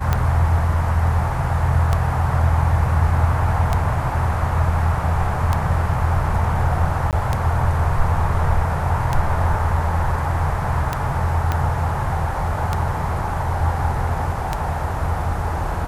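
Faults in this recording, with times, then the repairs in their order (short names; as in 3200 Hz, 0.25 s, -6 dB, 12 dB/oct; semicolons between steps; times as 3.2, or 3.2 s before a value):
tick 33 1/3 rpm -6 dBFS
7.11–7.13 gap 18 ms
11.52 pop -8 dBFS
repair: de-click; interpolate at 7.11, 18 ms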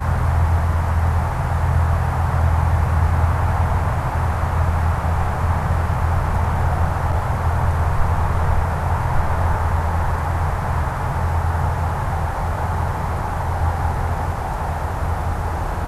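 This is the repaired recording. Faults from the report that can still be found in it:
11.52 pop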